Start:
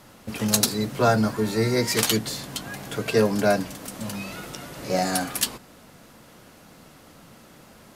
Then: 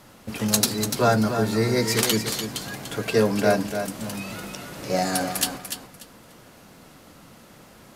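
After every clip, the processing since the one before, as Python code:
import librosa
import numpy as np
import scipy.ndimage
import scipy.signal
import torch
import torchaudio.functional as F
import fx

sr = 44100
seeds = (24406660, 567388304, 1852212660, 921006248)

y = fx.echo_feedback(x, sr, ms=293, feedback_pct=21, wet_db=-8)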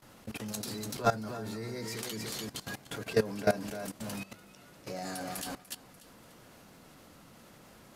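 y = fx.level_steps(x, sr, step_db=17)
y = y * 10.0 ** (-4.5 / 20.0)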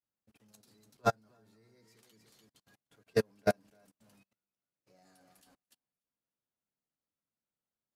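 y = fx.upward_expand(x, sr, threshold_db=-50.0, expansion=2.5)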